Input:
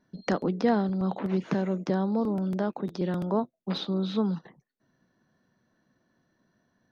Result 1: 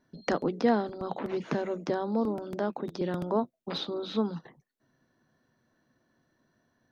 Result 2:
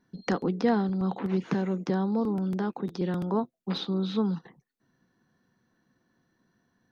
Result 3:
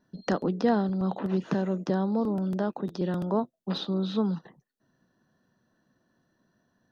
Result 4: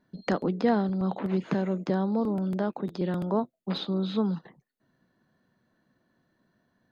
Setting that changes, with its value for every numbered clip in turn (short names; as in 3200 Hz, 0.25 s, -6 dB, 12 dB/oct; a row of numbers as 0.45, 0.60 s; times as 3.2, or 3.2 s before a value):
notch, frequency: 190, 610, 2200, 5700 Hz